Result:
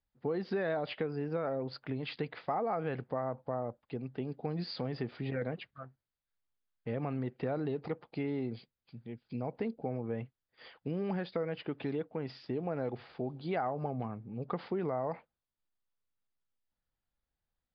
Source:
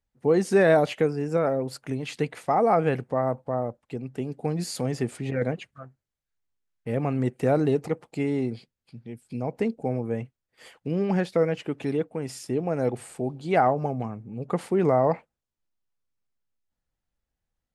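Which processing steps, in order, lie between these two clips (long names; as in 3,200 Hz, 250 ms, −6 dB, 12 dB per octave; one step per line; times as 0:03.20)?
in parallel at −1 dB: brickwall limiter −20.5 dBFS, peak gain reduction 11 dB
on the sum: downward compressor, threshold −20 dBFS, peak gain reduction 8 dB
Chebyshev low-pass with heavy ripple 4,900 Hz, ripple 3 dB
level −8 dB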